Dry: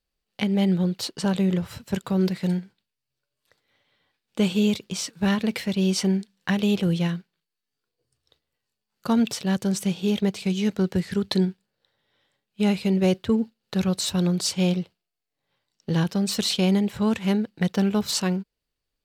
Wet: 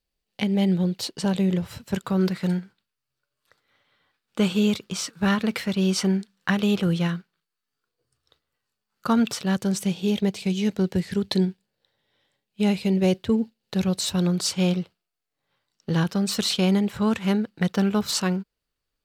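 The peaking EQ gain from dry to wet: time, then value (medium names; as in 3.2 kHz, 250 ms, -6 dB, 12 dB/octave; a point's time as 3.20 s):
peaking EQ 1.3 kHz 0.62 oct
1.64 s -3.5 dB
2.24 s +8 dB
9.30 s +8 dB
10.02 s -3.5 dB
13.86 s -3.5 dB
14.42 s +5 dB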